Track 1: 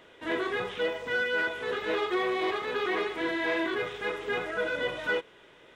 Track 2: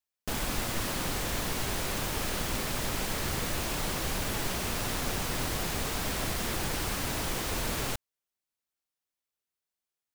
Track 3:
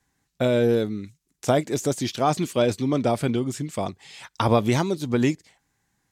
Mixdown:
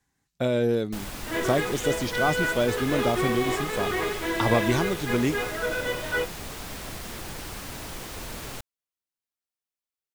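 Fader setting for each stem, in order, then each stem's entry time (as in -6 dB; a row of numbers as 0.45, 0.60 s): +1.5, -5.0, -3.5 dB; 1.05, 0.65, 0.00 s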